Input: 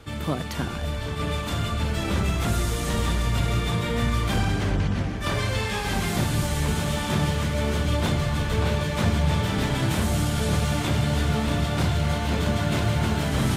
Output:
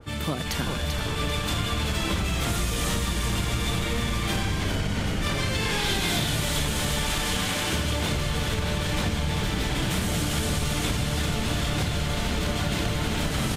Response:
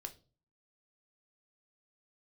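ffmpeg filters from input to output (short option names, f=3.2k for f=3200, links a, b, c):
-filter_complex "[0:a]asettb=1/sr,asplit=3[a][b][c];[a]atrim=end=5.794[d];[b]atrim=start=5.79:end=6.28,asetpts=PTS-STARTPTS,afade=t=in:d=0.004:c=qsin,afade=t=out:st=0.486:d=0.004:c=qsin,equalizer=f=3.6k:t=o:w=0.35:g=8[e];[c]atrim=start=6.276[f];[d][e]acrossfade=d=0.004:c1=hsin:c2=qsin[g];[g][f]acrossfade=d=0.004:c1=qsin:c2=hsin,asettb=1/sr,asplit=3[h][i][j];[h]atrim=end=7.094[k];[i]atrim=start=7.09:end=7.73,asetpts=PTS-STARTPTS,afade=t=in:d=0.004:c=qsin,afade=t=out:st=0.636:d=0.004:c=qsin,highpass=790[l];[j]atrim=start=7.726[m];[k][l]acrossfade=d=0.004:c1=hsin:c2=qsin[n];[n][m]acrossfade=d=0.004:c1=qsin:c2=hsin,asplit=2[o][p];[p]asplit=8[q][r][s][t][u][v][w][x];[q]adelay=391,afreqshift=-130,volume=-4dB[y];[r]adelay=782,afreqshift=-260,volume=-8.6dB[z];[s]adelay=1173,afreqshift=-390,volume=-13.2dB[aa];[t]adelay=1564,afreqshift=-520,volume=-17.7dB[ab];[u]adelay=1955,afreqshift=-650,volume=-22.3dB[ac];[v]adelay=2346,afreqshift=-780,volume=-26.9dB[ad];[w]adelay=2737,afreqshift=-910,volume=-31.5dB[ae];[x]adelay=3128,afreqshift=-1040,volume=-36.1dB[af];[y][z][aa][ab][ac][ad][ae][af]amix=inputs=8:normalize=0[ag];[o][ag]amix=inputs=2:normalize=0,acompressor=threshold=-23dB:ratio=6,adynamicequalizer=threshold=0.00398:dfrequency=1800:dqfactor=0.7:tfrequency=1800:tqfactor=0.7:attack=5:release=100:ratio=0.375:range=3:mode=boostabove:tftype=highshelf"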